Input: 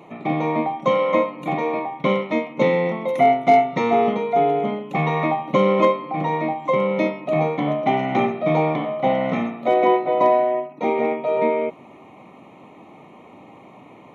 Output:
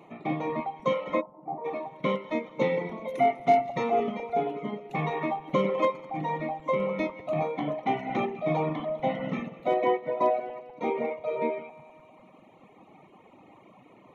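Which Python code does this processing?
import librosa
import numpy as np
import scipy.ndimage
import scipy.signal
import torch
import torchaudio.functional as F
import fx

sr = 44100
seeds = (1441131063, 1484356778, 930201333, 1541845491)

y = fx.reverse_delay_fb(x, sr, ms=100, feedback_pct=79, wet_db=-10)
y = fx.dereverb_blind(y, sr, rt60_s=1.5)
y = fx.ladder_lowpass(y, sr, hz=990.0, resonance_pct=50, at=(1.2, 1.64), fade=0.02)
y = y * 10.0 ** (-7.0 / 20.0)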